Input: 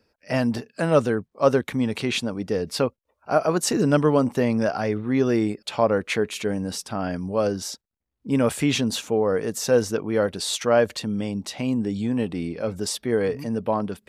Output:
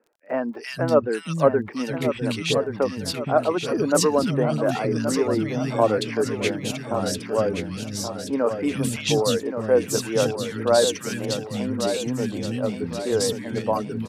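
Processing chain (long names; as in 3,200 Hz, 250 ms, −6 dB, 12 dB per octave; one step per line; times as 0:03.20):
reverb reduction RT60 0.59 s
three-band delay without the direct sound mids, highs, lows 340/470 ms, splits 250/1,800 Hz
surface crackle 30 per second −49 dBFS
on a send: repeating echo 1,126 ms, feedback 46%, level −8 dB
on the sum: level +1.5 dB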